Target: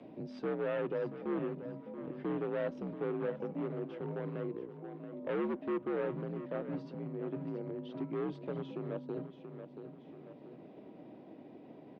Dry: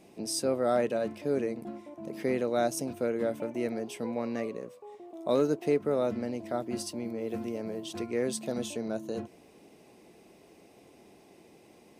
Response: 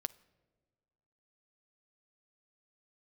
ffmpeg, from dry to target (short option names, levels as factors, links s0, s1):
-filter_complex "[0:a]agate=range=0.0224:threshold=0.00251:ratio=3:detection=peak,equalizer=f=2500:t=o:w=1.5:g=-14.5,asoftclip=type=hard:threshold=0.0376,highpass=f=260:t=q:w=0.5412,highpass=f=260:t=q:w=1.307,lowpass=f=3300:t=q:w=0.5176,lowpass=f=3300:t=q:w=0.7071,lowpass=f=3300:t=q:w=1.932,afreqshift=-77,aecho=1:1:681|1362|2043:0.251|0.0578|0.0133,asplit=2[s0][s1];[1:a]atrim=start_sample=2205,highshelf=f=5000:g=11.5[s2];[s1][s2]afir=irnorm=-1:irlink=0,volume=0.668[s3];[s0][s3]amix=inputs=2:normalize=0,acompressor=mode=upward:threshold=0.02:ratio=2.5,volume=0.501"